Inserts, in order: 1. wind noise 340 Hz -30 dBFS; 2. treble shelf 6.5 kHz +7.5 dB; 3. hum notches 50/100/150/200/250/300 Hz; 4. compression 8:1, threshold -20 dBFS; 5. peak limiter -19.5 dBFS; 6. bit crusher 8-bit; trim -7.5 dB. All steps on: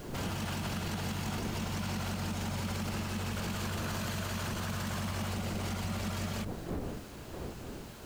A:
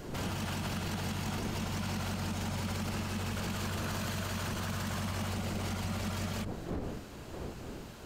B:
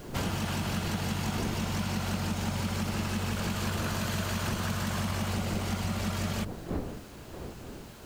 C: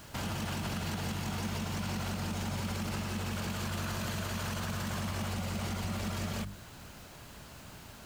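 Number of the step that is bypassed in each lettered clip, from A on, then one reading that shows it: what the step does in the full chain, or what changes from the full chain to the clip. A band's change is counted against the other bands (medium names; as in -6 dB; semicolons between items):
6, distortion -24 dB; 5, mean gain reduction 3.0 dB; 1, momentary loudness spread change +6 LU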